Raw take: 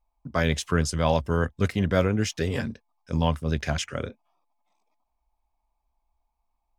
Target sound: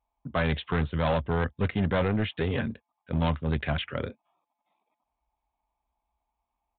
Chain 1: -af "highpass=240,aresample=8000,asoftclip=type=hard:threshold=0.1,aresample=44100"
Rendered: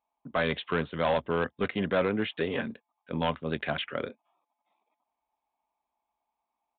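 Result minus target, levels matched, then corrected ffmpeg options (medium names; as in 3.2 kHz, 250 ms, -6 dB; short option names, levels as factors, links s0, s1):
125 Hz band -7.5 dB
-af "highpass=60,aresample=8000,asoftclip=type=hard:threshold=0.1,aresample=44100"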